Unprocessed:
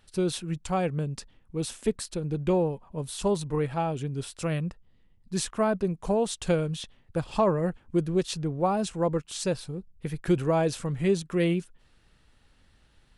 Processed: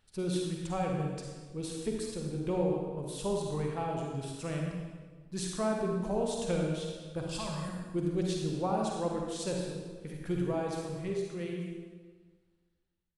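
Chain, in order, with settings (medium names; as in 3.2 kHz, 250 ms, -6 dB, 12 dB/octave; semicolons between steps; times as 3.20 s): fade out at the end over 3.73 s; 7.29–7.69 s: FFT filter 140 Hz 0 dB, 380 Hz -20 dB, 5.5 kHz +15 dB; reverberation RT60 1.5 s, pre-delay 40 ms, DRR -0.5 dB; trim -8.5 dB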